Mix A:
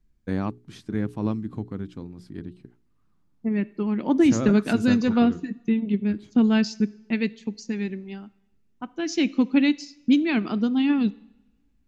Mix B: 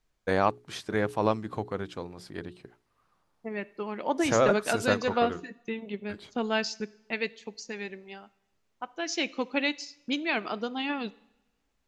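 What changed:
first voice +8.5 dB
master: add low shelf with overshoot 380 Hz −12.5 dB, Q 1.5

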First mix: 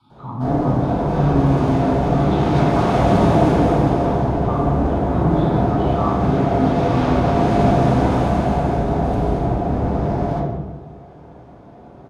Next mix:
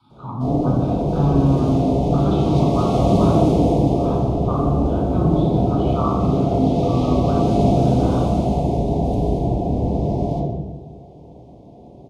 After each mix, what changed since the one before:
background: add Butterworth band-reject 1,500 Hz, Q 0.63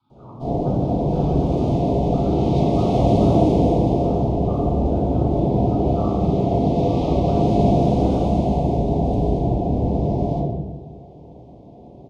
speech −12.0 dB
master: add parametric band 14,000 Hz −11 dB 1.4 octaves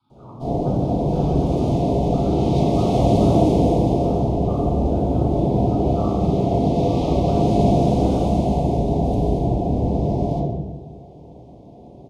master: add parametric band 14,000 Hz +11 dB 1.4 octaves

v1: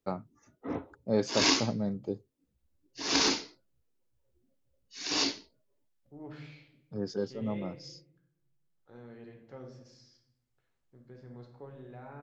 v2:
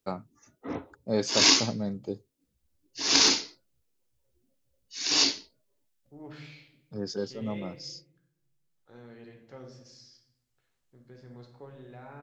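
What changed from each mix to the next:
master: add high-shelf EQ 2,500 Hz +9 dB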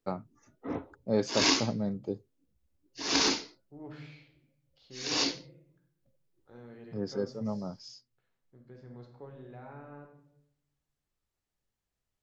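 second voice: entry −2.40 s
master: add high-shelf EQ 2,500 Hz −9 dB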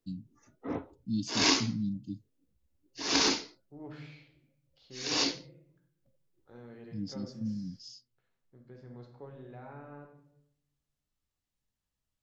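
first voice: add linear-phase brick-wall band-stop 320–2,600 Hz

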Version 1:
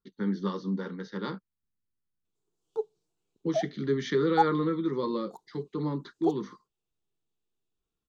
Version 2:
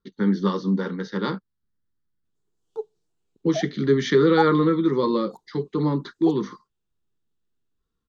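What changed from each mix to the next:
speech +8.5 dB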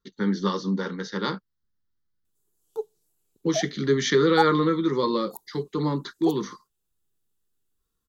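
speech: add parametric band 230 Hz −4 dB 2.4 octaves
master: remove high-frequency loss of the air 120 metres

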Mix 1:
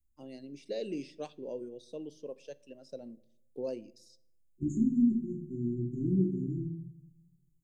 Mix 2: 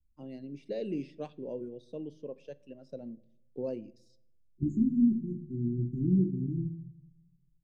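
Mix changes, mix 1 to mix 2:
second voice: send −7.5 dB
master: add bass and treble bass +8 dB, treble −13 dB

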